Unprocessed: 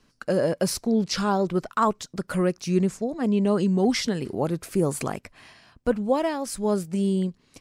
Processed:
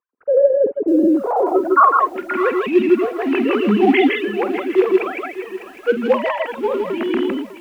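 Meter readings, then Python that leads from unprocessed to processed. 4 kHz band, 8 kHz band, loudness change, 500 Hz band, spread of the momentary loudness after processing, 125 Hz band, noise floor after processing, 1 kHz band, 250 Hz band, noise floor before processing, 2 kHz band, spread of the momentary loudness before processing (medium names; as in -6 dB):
+1.5 dB, under -15 dB, +8.0 dB, +9.5 dB, 9 LU, no reading, -40 dBFS, +11.0 dB, +6.0 dB, -64 dBFS, +12.0 dB, 6 LU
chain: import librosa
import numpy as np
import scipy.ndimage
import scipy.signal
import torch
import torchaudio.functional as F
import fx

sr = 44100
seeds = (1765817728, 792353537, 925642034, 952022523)

p1 = fx.sine_speech(x, sr)
p2 = fx.highpass(p1, sr, hz=190.0, slope=6)
p3 = fx.peak_eq(p2, sr, hz=600.0, db=-7.0, octaves=0.24)
p4 = fx.quant_companded(p3, sr, bits=4)
p5 = p3 + (p4 * librosa.db_to_amplitude(-10.0))
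p6 = fx.filter_sweep_lowpass(p5, sr, from_hz=450.0, to_hz=2600.0, start_s=1.07, end_s=2.25, q=2.8)
p7 = p6 + fx.echo_multitap(p6, sr, ms=(48, 158, 161), db=(-12.5, -6.5, -4.0), dry=0)
p8 = fx.echo_crushed(p7, sr, ms=601, feedback_pct=35, bits=7, wet_db=-14.0)
y = p8 * librosa.db_to_amplitude(3.0)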